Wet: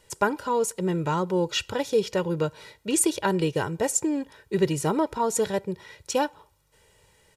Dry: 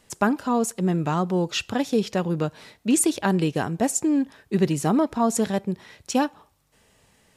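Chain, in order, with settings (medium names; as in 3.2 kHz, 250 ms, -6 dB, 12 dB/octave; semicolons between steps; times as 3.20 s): comb 2.1 ms, depth 69%; trim -2 dB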